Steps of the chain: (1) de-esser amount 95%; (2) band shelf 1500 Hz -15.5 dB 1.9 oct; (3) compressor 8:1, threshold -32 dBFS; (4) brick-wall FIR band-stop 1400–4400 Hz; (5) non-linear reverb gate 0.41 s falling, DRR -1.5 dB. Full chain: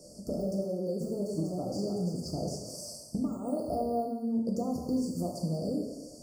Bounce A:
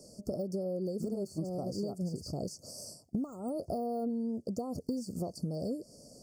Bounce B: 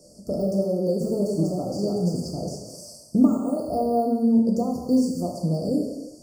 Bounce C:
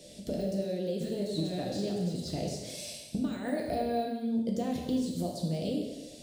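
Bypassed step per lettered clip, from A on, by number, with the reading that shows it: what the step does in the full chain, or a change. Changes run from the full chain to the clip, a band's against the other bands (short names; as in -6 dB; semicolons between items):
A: 5, loudness change -3.5 LU; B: 3, mean gain reduction 6.0 dB; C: 4, 4 kHz band +5.0 dB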